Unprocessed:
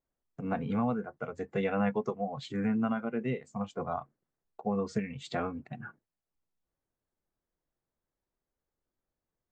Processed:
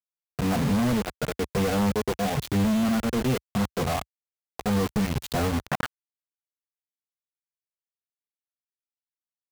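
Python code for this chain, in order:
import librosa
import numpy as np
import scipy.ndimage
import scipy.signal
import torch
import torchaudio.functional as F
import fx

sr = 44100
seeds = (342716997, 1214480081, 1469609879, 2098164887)

y = fx.dynamic_eq(x, sr, hz=1800.0, q=1.2, threshold_db=-51.0, ratio=4.0, max_db=-6)
y = fx.quant_companded(y, sr, bits=2)
y = fx.peak_eq(y, sr, hz=fx.steps((0.0, 64.0), (5.68, 1100.0)), db=11.0, octaves=2.0)
y = y * 10.0 ** (1.0 / 20.0)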